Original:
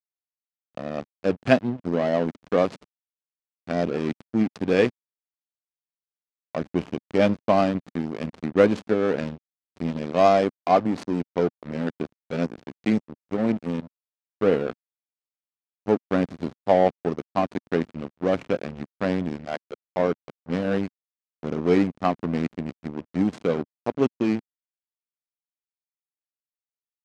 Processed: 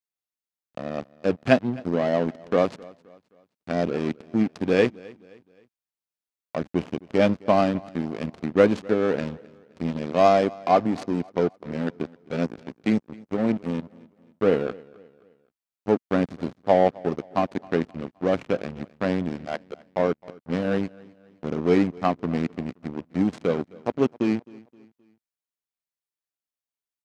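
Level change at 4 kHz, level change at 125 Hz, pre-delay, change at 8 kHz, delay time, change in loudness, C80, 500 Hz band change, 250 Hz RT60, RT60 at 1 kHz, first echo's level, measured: 0.0 dB, 0.0 dB, no reverb, no reading, 262 ms, 0.0 dB, no reverb, 0.0 dB, no reverb, no reverb, -23.0 dB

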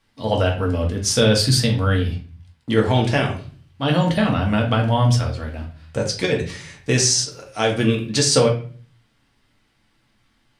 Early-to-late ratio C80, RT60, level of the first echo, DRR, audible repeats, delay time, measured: 14.0 dB, 0.40 s, no echo, -0.5 dB, no echo, no echo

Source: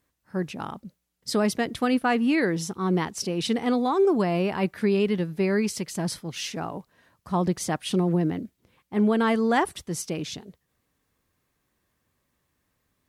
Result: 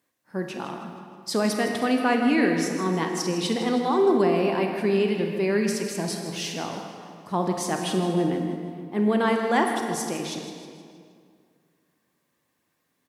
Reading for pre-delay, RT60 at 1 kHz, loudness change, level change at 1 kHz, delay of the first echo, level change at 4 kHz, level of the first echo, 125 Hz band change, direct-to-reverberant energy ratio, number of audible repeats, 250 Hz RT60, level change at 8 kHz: 28 ms, 2.1 s, +0.5 dB, +2.0 dB, 158 ms, +1.5 dB, -12.0 dB, -2.0 dB, 2.5 dB, 3, 2.5 s, +1.5 dB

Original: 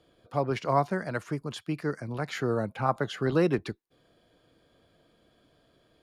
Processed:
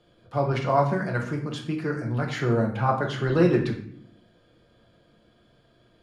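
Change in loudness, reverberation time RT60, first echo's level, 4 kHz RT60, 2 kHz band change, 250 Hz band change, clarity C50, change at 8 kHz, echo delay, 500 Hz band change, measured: +4.5 dB, 0.60 s, no echo, 0.45 s, +4.0 dB, +5.0 dB, 7.5 dB, no reading, no echo, +3.5 dB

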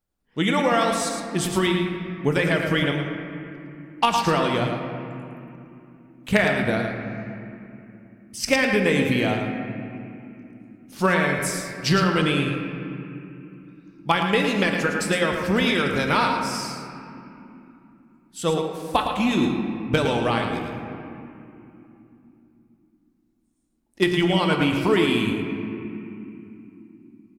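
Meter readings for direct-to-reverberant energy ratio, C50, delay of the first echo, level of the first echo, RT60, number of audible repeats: 2.0 dB, 2.5 dB, 110 ms, -7.0 dB, 3.0 s, 1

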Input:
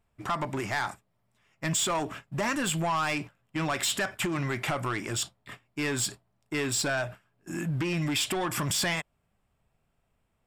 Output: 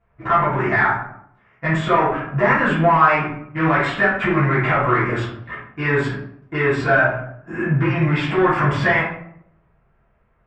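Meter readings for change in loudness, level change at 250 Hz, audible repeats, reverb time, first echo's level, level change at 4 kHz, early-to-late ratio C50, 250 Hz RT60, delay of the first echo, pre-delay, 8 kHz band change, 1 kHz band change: +11.5 dB, +10.5 dB, no echo, 0.70 s, no echo, -2.5 dB, 2.5 dB, 0.85 s, no echo, 3 ms, under -15 dB, +14.5 dB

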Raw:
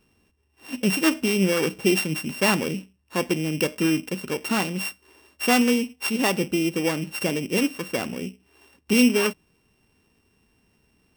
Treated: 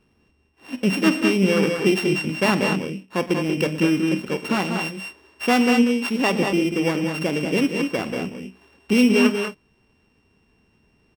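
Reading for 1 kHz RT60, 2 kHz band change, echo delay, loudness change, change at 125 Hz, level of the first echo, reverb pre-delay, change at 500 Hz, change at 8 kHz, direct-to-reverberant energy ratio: no reverb, +2.0 dB, 47 ms, +2.5 dB, +3.5 dB, -17.0 dB, no reverb, +3.5 dB, -5.0 dB, no reverb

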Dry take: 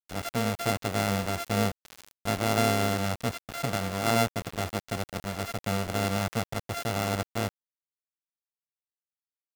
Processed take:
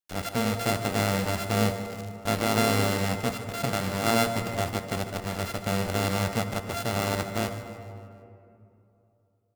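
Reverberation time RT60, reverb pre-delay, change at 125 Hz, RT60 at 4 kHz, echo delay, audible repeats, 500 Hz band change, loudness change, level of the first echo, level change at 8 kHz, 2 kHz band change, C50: 2.8 s, 3 ms, +2.0 dB, 1.4 s, 150 ms, 3, +2.0 dB, +2.0 dB, -13.5 dB, +2.0 dB, +2.0 dB, 7.5 dB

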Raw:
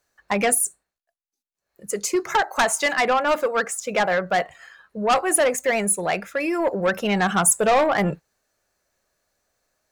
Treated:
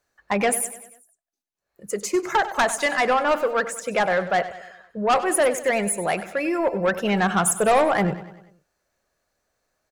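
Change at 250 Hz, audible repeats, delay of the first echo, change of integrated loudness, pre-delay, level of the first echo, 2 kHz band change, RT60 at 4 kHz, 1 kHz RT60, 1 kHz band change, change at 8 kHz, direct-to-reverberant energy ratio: 0.0 dB, 4, 97 ms, -1.0 dB, no reverb, -14.5 dB, -1.0 dB, no reverb, no reverb, 0.0 dB, -4.5 dB, no reverb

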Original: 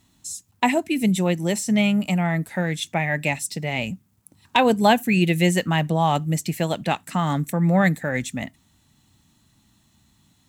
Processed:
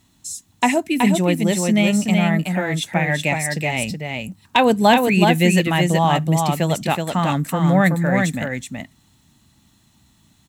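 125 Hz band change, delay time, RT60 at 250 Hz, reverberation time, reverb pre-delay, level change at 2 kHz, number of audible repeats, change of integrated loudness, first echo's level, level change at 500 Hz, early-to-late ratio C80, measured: +3.5 dB, 374 ms, no reverb, no reverb, no reverb, +4.0 dB, 1, +3.5 dB, -4.0 dB, +4.0 dB, no reverb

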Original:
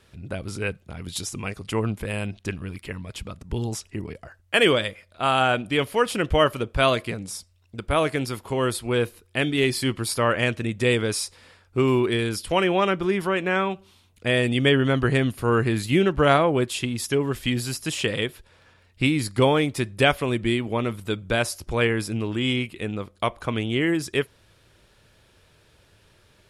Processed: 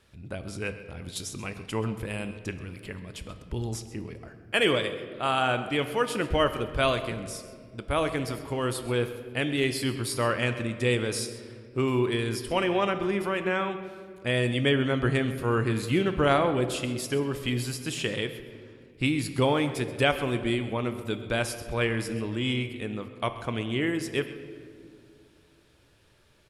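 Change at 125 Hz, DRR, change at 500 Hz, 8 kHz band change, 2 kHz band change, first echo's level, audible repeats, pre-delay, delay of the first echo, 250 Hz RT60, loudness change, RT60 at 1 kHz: -4.0 dB, 9.0 dB, -4.5 dB, -4.5 dB, -4.5 dB, -17.0 dB, 1, 3 ms, 131 ms, 3.0 s, -4.5 dB, 1.8 s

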